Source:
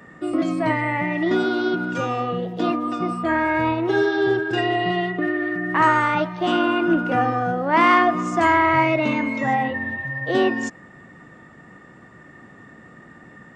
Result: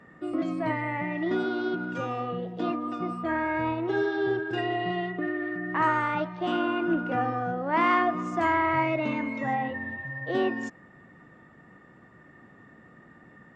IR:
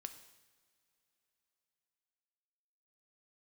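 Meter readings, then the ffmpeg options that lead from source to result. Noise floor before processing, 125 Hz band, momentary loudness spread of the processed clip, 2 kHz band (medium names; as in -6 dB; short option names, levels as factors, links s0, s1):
-47 dBFS, -7.0 dB, 7 LU, -8.0 dB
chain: -af "lowpass=f=3300:p=1,volume=0.447"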